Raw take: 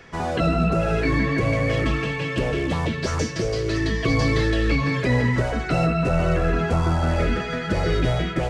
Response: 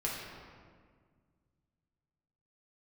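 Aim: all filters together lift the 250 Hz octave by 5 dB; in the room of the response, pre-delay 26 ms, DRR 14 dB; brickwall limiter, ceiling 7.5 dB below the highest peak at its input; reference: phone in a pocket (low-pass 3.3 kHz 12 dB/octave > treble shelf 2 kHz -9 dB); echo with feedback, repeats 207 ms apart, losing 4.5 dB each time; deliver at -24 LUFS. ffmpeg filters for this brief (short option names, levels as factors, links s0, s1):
-filter_complex "[0:a]equalizer=f=250:t=o:g=7,alimiter=limit=0.237:level=0:latency=1,aecho=1:1:207|414|621|828|1035|1242|1449|1656|1863:0.596|0.357|0.214|0.129|0.0772|0.0463|0.0278|0.0167|0.01,asplit=2[s0][s1];[1:a]atrim=start_sample=2205,adelay=26[s2];[s1][s2]afir=irnorm=-1:irlink=0,volume=0.119[s3];[s0][s3]amix=inputs=2:normalize=0,lowpass=3300,highshelf=f=2000:g=-9,volume=0.708"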